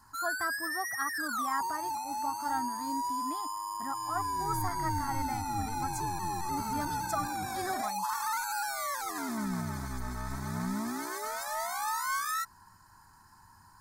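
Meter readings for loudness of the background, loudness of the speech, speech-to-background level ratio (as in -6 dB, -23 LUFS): -34.5 LUFS, -39.0 LUFS, -4.5 dB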